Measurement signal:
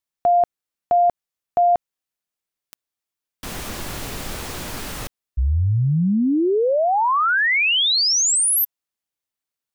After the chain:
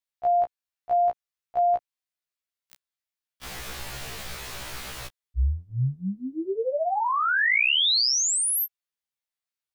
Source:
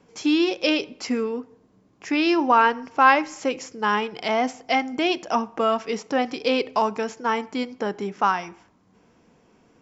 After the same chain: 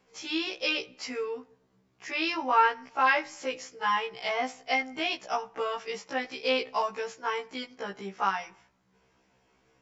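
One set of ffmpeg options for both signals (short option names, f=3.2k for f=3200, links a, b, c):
-af "equalizer=f=250:t=o:w=1:g=-9,equalizer=f=2k:t=o:w=1:g=3,equalizer=f=4k:t=o:w=1:g=3,afftfilt=real='re*1.73*eq(mod(b,3),0)':imag='im*1.73*eq(mod(b,3),0)':win_size=2048:overlap=0.75,volume=-4.5dB"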